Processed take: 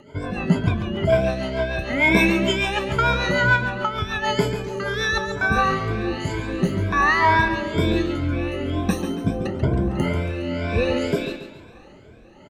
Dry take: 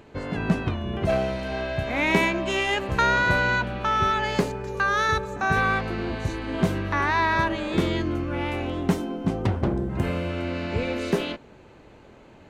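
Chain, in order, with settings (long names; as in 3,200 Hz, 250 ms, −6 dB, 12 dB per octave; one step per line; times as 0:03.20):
rippled gain that drifts along the octave scale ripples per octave 1.7, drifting +2.1 Hz, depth 23 dB
0:03.56–0:04.22: downward compressor 3 to 1, threshold −21 dBFS, peak gain reduction 7 dB
rotating-speaker cabinet horn 6.7 Hz, later 1.1 Hz, at 0:05.01
0:02.10–0:02.52: double-tracking delay 15 ms −5 dB
repeating echo 139 ms, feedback 40%, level −9.5 dB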